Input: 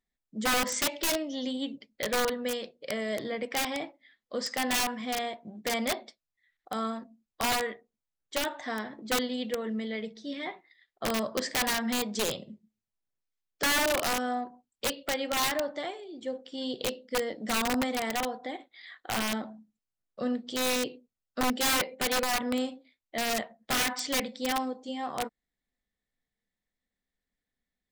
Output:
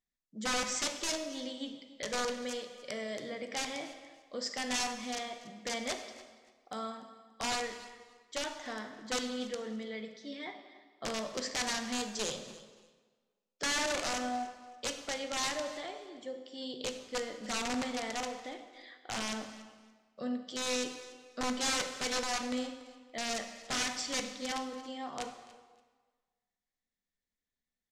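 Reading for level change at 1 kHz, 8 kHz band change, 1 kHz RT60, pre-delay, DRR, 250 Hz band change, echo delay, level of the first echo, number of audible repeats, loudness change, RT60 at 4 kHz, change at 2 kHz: −6.0 dB, −3.0 dB, 1.4 s, 9 ms, 6.0 dB, −6.5 dB, 287 ms, −19.0 dB, 2, −5.5 dB, 1.2 s, −6.0 dB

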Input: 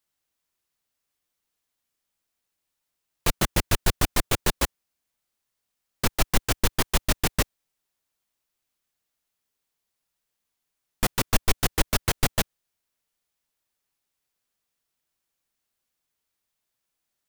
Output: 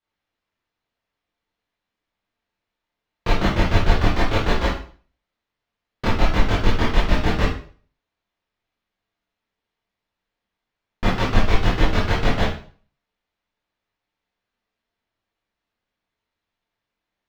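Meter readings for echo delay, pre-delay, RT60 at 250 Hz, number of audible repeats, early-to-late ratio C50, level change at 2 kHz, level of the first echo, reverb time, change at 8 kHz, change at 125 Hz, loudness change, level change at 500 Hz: no echo audible, 18 ms, 0.45 s, no echo audible, 3.5 dB, +5.0 dB, no echo audible, 0.45 s, −13.5 dB, +7.5 dB, +4.0 dB, +6.5 dB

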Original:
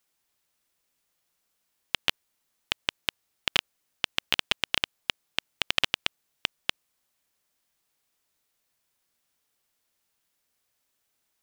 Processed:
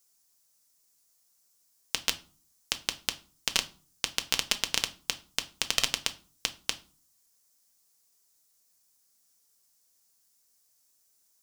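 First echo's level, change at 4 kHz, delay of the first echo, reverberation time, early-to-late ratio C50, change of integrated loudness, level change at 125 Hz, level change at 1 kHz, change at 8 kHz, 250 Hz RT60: no echo audible, −2.0 dB, no echo audible, 0.40 s, 18.0 dB, −1.0 dB, −1.5 dB, −2.5 dB, +10.0 dB, 0.60 s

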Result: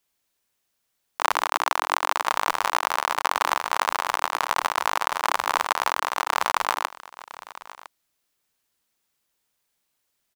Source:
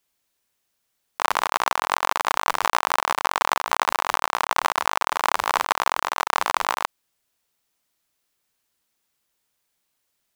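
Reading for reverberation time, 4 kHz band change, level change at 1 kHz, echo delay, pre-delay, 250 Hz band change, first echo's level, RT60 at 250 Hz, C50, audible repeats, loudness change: no reverb audible, −1.0 dB, −1.0 dB, 1,008 ms, no reverb audible, −2.5 dB, −17.5 dB, no reverb audible, no reverb audible, 1, −1.0 dB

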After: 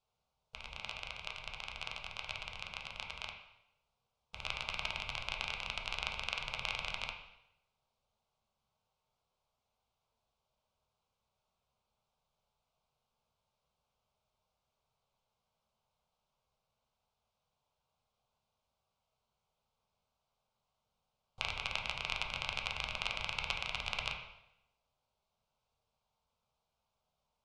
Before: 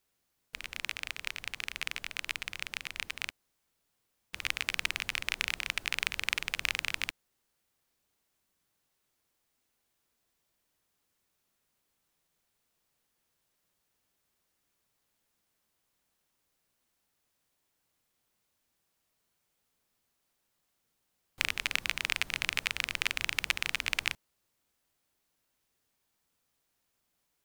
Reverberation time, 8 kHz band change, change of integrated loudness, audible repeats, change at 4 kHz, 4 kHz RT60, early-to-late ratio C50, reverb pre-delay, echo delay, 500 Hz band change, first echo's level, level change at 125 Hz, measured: 0.80 s, −12.5 dB, −6.0 dB, no echo audible, −5.0 dB, 0.75 s, 5.5 dB, 5 ms, no echo audible, +1.0 dB, no echo audible, +2.0 dB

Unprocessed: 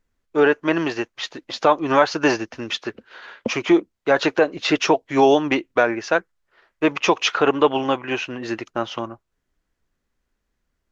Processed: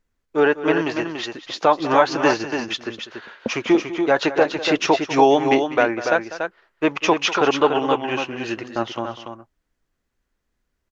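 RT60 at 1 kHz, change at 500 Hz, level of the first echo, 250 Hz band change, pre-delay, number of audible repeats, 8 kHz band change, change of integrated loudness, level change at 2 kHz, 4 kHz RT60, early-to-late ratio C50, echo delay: no reverb audible, +0.5 dB, −15.0 dB, 0.0 dB, no reverb audible, 2, can't be measured, 0.0 dB, 0.0 dB, no reverb audible, no reverb audible, 197 ms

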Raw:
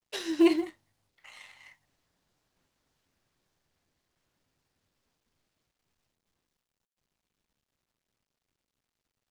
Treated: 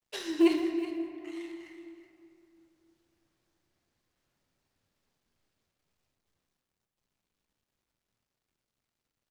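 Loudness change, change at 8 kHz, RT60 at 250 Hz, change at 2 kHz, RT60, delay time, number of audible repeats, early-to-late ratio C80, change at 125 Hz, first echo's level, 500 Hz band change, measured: −4.0 dB, −2.0 dB, 3.1 s, −1.5 dB, 2.6 s, 372 ms, 1, 6.5 dB, −1.0 dB, −13.0 dB, −0.5 dB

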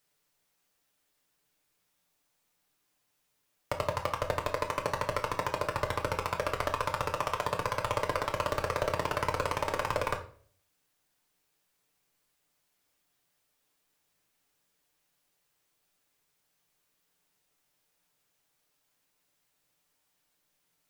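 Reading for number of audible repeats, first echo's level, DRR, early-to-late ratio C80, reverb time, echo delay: no echo audible, no echo audible, 2.0 dB, 16.0 dB, 0.50 s, no echo audible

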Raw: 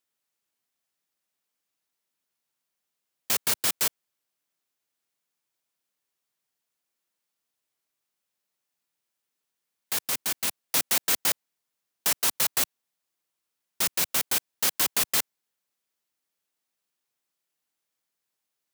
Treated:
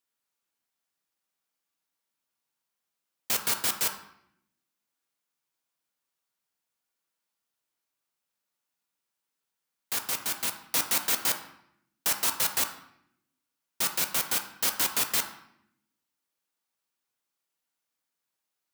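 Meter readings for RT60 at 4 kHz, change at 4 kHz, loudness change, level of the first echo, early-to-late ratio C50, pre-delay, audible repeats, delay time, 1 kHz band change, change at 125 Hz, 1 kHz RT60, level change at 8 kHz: 0.60 s, −2.0 dB, −2.0 dB, no echo audible, 8.5 dB, 4 ms, no echo audible, no echo audible, +0.5 dB, −2.0 dB, 0.70 s, −2.0 dB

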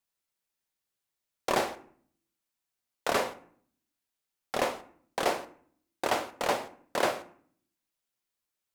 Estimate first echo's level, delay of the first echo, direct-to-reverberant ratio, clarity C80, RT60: no echo audible, no echo audible, 10.0 dB, 19.5 dB, 0.55 s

